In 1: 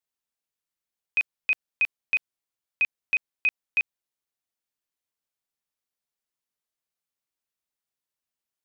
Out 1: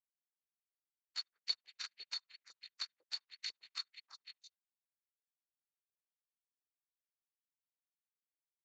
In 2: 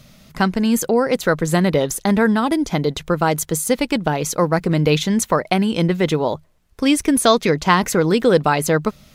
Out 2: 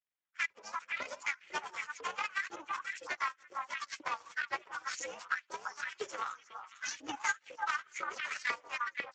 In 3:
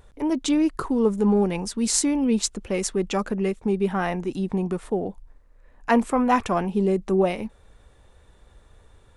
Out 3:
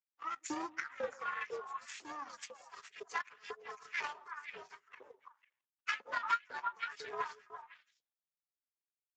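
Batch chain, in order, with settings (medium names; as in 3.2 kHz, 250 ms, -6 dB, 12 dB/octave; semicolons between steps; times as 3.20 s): frequency axis rescaled in octaves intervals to 124%; three-band isolator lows -15 dB, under 260 Hz, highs -14 dB, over 6.3 kHz; in parallel at -6 dB: hard clipper -16 dBFS; on the sum: tilt EQ +3 dB/octave; static phaser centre 1.6 kHz, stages 4; feedback delay 72 ms, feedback 22%, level -21.5 dB; power-law waveshaper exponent 2; on a send: repeats whose band climbs or falls 166 ms, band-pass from 380 Hz, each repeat 1.4 oct, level -7 dB; on the sum: LFO high-pass saw up 2 Hz 460–2300 Hz; high-pass 88 Hz 12 dB/octave; compression 5:1, threshold -43 dBFS; trim +9 dB; Speex 17 kbps 16 kHz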